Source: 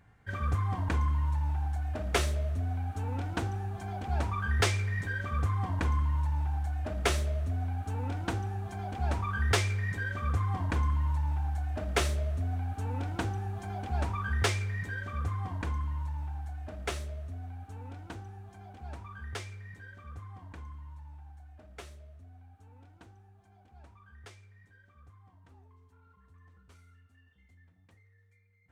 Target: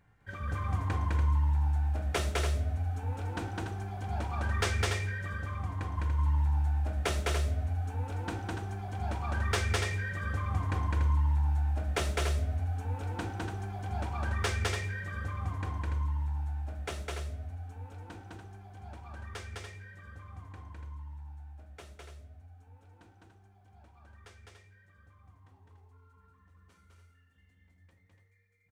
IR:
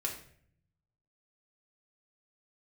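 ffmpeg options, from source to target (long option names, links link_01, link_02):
-filter_complex "[0:a]asettb=1/sr,asplit=3[link_01][link_02][link_03];[link_01]atrim=end=4.914[link_04];[link_02]atrim=start=4.91:end=5.98,asetpts=PTS-STARTPTS,afade=type=in:duration=0.004:curve=qsin,afade=type=out:start_time=1.066:duration=0.004:curve=qsin,acompressor=threshold=-31dB:ratio=6[link_05];[link_03]atrim=start=5.976[link_06];[link_04][link_05]acrossfade=duration=0.004:curve1=hsin:curve2=qsin[link_07];[link_07][link_06]acrossfade=duration=0.004:curve1=qsin:curve2=hsin,aecho=1:1:207|288.6:0.891|0.501,asplit=2[link_08][link_09];[1:a]atrim=start_sample=2205,asetrate=57330,aresample=44100[link_10];[link_09][link_10]afir=irnorm=-1:irlink=0,volume=-5.5dB[link_11];[link_08][link_11]amix=inputs=2:normalize=0,volume=-7dB"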